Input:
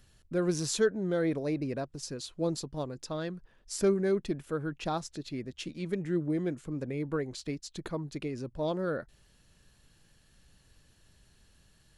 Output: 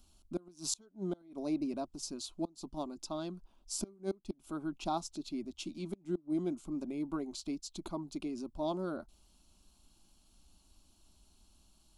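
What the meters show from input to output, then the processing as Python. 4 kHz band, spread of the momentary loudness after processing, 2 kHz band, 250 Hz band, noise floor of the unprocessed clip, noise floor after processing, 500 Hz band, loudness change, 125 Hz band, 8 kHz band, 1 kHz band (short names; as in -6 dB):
-3.5 dB, 7 LU, -14.0 dB, -4.0 dB, -65 dBFS, -68 dBFS, -10.0 dB, -6.0 dB, -11.0 dB, -2.0 dB, -2.0 dB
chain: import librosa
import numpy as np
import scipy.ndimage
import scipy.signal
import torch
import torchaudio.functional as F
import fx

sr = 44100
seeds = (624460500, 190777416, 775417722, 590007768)

y = fx.gate_flip(x, sr, shuts_db=-21.0, range_db=-27)
y = fx.fixed_phaser(y, sr, hz=480.0, stages=6)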